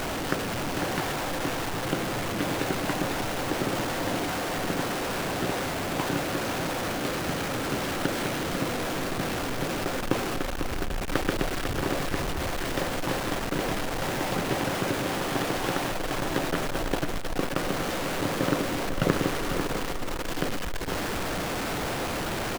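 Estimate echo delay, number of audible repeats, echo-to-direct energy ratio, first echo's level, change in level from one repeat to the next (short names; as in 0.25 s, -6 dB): 0.497 s, 2, -7.5 dB, -7.5 dB, -14.0 dB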